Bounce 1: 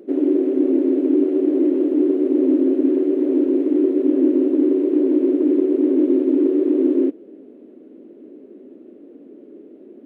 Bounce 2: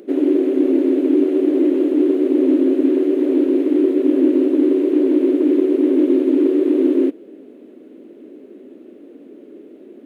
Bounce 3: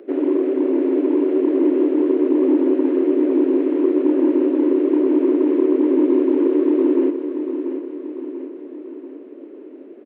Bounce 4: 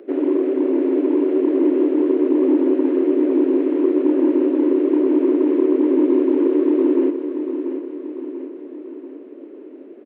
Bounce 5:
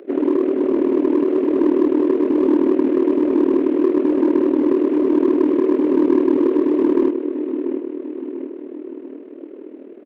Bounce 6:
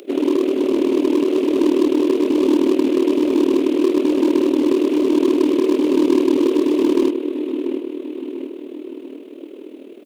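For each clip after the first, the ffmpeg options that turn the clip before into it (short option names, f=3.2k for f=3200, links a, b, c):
-af "tiltshelf=f=1.3k:g=-5.5,volume=6.5dB"
-filter_complex "[0:a]acontrast=30,acrossover=split=270 2800:gain=0.0891 1 0.112[a][b][c];[a][b][c]amix=inputs=3:normalize=0,aecho=1:1:689|1378|2067|2756|3445|4134:0.355|0.188|0.0997|0.0528|0.028|0.0148,volume=-4dB"
-af anull
-filter_complex "[0:a]asplit=2[a][b];[b]volume=16.5dB,asoftclip=hard,volume=-16.5dB,volume=-3.5dB[c];[a][c]amix=inputs=2:normalize=0,tremolo=f=39:d=0.667"
-af "aexciter=amount=5.9:drive=7:freq=2.6k"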